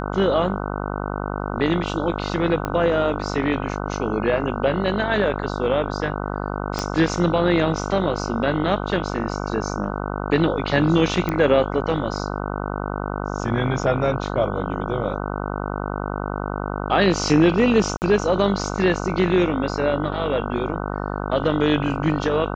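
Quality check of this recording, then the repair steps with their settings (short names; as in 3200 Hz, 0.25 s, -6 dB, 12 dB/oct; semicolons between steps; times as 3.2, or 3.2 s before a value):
buzz 50 Hz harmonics 30 -27 dBFS
2.65 pop -12 dBFS
6.79 pop -9 dBFS
11.29 pop -11 dBFS
17.97–18.02 gap 49 ms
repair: de-click; de-hum 50 Hz, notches 30; interpolate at 17.97, 49 ms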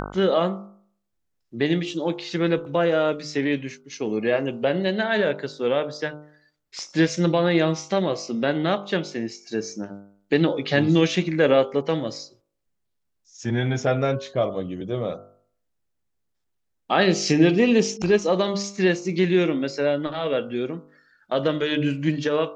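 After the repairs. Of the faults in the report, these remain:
2.65 pop
6.79 pop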